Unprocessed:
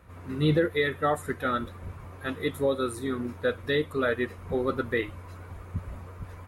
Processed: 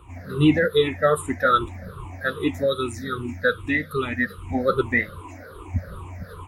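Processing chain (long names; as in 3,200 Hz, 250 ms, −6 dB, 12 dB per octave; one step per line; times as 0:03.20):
rippled gain that drifts along the octave scale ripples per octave 0.65, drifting −2.5 Hz, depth 23 dB
0:02.64–0:04.54: gain on a spectral selection 340–1,200 Hz −7 dB
0:05.21–0:05.68: low shelf with overshoot 230 Hz −6.5 dB, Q 3
level +1 dB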